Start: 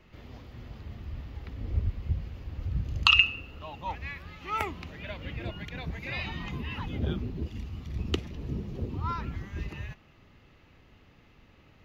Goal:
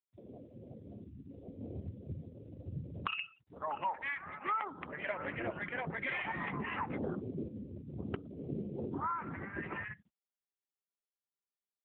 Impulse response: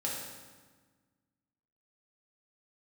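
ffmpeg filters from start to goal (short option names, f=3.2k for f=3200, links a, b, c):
-filter_complex "[0:a]lowpass=f=2k:w=0.5412,lowpass=f=2k:w=1.3066,aemphasis=mode=production:type=riaa,bandreject=f=60:t=h:w=6,bandreject=f=120:t=h:w=6,bandreject=f=180:t=h:w=6,bandreject=f=240:t=h:w=6,bandreject=f=300:t=h:w=6,asplit=2[a][b];[b]adelay=641.4,volume=-21dB,highshelf=f=4k:g=-14.4[c];[a][c]amix=inputs=2:normalize=0,acompressor=threshold=-39dB:ratio=16,highpass=f=79:p=1,afwtdn=0.00355,asplit=2[d][e];[1:a]atrim=start_sample=2205,lowpass=2.6k[f];[e][f]afir=irnorm=-1:irlink=0,volume=-17dB[g];[d][g]amix=inputs=2:normalize=0,afftfilt=real='re*gte(hypot(re,im),0.00316)':imag='im*gte(hypot(re,im),0.00316)':win_size=1024:overlap=0.75,volume=7.5dB" -ar 8000 -c:a libopencore_amrnb -b:a 7950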